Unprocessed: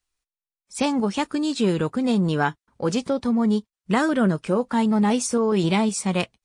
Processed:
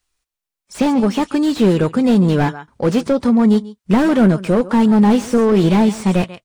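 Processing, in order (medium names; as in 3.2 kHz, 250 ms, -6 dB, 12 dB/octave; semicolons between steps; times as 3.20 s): echo from a far wall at 24 m, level -19 dB; slew-rate limiter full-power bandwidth 57 Hz; trim +8 dB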